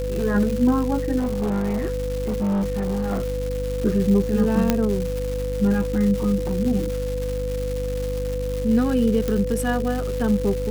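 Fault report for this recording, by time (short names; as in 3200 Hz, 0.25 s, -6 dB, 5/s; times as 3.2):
crackle 430/s -27 dBFS
hum 50 Hz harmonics 6 -28 dBFS
tone 500 Hz -26 dBFS
1.18–3.38 clipped -19.5 dBFS
4.7 pop -4 dBFS
9.28 pop -11 dBFS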